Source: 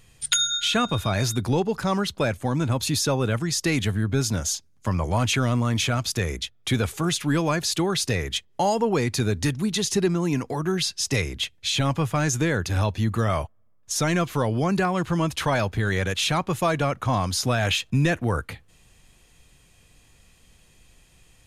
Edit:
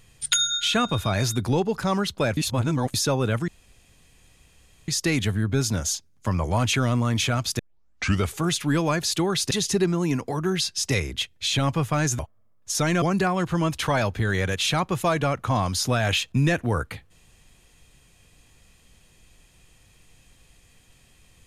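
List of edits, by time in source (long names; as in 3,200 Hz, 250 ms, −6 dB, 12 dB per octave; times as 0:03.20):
0:02.37–0:02.94: reverse
0:03.48: splice in room tone 1.40 s
0:06.19: tape start 0.69 s
0:08.11–0:09.73: remove
0:12.41–0:13.40: remove
0:14.23–0:14.60: remove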